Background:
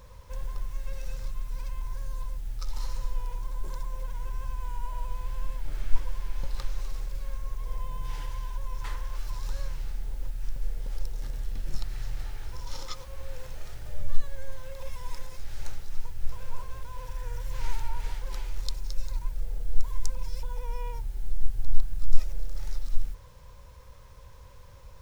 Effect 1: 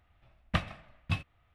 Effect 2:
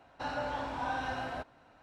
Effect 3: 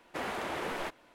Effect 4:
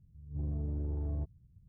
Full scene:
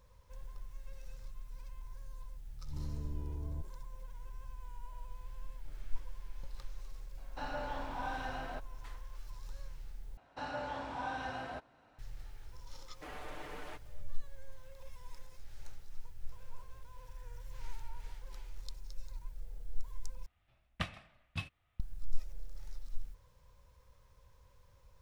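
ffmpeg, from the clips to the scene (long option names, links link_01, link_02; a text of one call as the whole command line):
ffmpeg -i bed.wav -i cue0.wav -i cue1.wav -i cue2.wav -i cue3.wav -filter_complex "[2:a]asplit=2[link_01][link_02];[0:a]volume=-13.5dB[link_03];[4:a]asuperstop=centerf=730:order=4:qfactor=7.4[link_04];[3:a]aecho=1:1:6.7:0.71[link_05];[1:a]highshelf=frequency=2500:gain=7.5[link_06];[link_03]asplit=3[link_07][link_08][link_09];[link_07]atrim=end=10.174[link_10];[link_02]atrim=end=1.82,asetpts=PTS-STARTPTS,volume=-4.5dB[link_11];[link_08]atrim=start=11.986:end=20.264[link_12];[link_06]atrim=end=1.54,asetpts=PTS-STARTPTS,volume=-9.5dB[link_13];[link_09]atrim=start=21.796[link_14];[link_04]atrim=end=1.68,asetpts=PTS-STARTPTS,volume=-6dB,afade=type=in:duration=0.004:curve=hsin,afade=type=out:start_time=1.676:duration=0.004:curve=hsin,adelay=2370[link_15];[link_01]atrim=end=1.82,asetpts=PTS-STARTPTS,volume=-5dB,afade=type=in:duration=0.004:curve=hsin,afade=type=out:start_time=1.816:duration=0.004:curve=hsin,adelay=7170[link_16];[link_05]atrim=end=1.14,asetpts=PTS-STARTPTS,volume=-13.5dB,afade=type=in:duration=0.004:curve=hsin,afade=type=out:start_time=1.136:duration=0.004:curve=hsin,adelay=12870[link_17];[link_10][link_11]acrossfade=duration=0.004:curve1=hsin:curve2=hsin[link_18];[link_18][link_12]acrossfade=duration=0.004:curve1=hsin:curve2=hsin[link_19];[link_19][link_13]acrossfade=duration=0.004:curve1=hsin:curve2=hsin[link_20];[link_20][link_14]acrossfade=duration=0.004:curve1=hsin:curve2=hsin[link_21];[link_21][link_15][link_16][link_17]amix=inputs=4:normalize=0" out.wav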